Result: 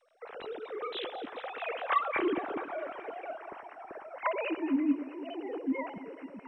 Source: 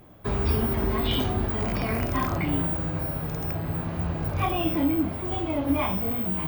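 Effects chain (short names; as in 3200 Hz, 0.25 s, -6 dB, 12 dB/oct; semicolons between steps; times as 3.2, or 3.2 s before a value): sine-wave speech; Doppler pass-by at 2.64, 42 m/s, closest 25 m; on a send: echo with dull and thin repeats by turns 0.108 s, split 890 Hz, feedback 81%, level -13 dB; on the sum: MP2 128 kbps 22050 Hz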